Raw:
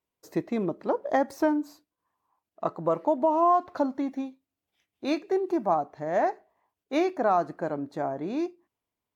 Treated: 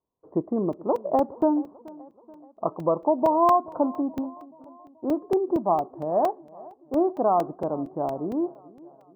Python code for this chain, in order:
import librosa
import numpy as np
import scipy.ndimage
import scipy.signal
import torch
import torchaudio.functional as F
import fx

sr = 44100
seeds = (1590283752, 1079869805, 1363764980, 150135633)

p1 = scipy.signal.sosfilt(scipy.signal.ellip(4, 1.0, 60, 1100.0, 'lowpass', fs=sr, output='sos'), x)
p2 = p1 + fx.echo_feedback(p1, sr, ms=429, feedback_pct=53, wet_db=-21.5, dry=0)
p3 = fx.buffer_crackle(p2, sr, first_s=0.73, period_s=0.23, block=128, kind='zero')
y = p3 * 10.0 ** (3.0 / 20.0)